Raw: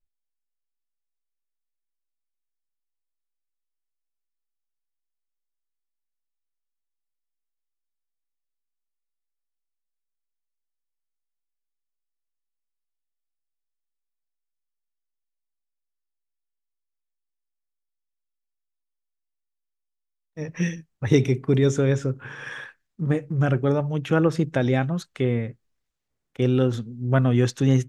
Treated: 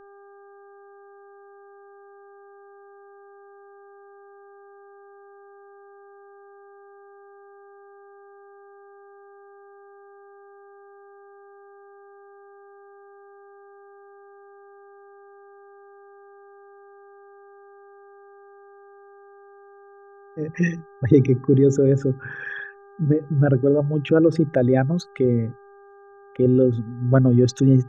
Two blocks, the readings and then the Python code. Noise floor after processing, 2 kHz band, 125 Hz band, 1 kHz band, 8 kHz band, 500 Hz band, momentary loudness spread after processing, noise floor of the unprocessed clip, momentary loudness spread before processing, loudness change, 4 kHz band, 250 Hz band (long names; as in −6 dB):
−48 dBFS, 0.0 dB, +2.0 dB, −0.5 dB, −1.5 dB, +5.0 dB, 15 LU, −81 dBFS, 15 LU, +3.0 dB, can't be measured, +4.0 dB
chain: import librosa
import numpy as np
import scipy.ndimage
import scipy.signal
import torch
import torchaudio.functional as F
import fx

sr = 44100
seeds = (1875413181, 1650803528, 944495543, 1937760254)

y = fx.envelope_sharpen(x, sr, power=2.0)
y = fx.dmg_buzz(y, sr, base_hz=400.0, harmonics=4, level_db=-52.0, tilt_db=-6, odd_only=False)
y = y * librosa.db_to_amplitude(3.5)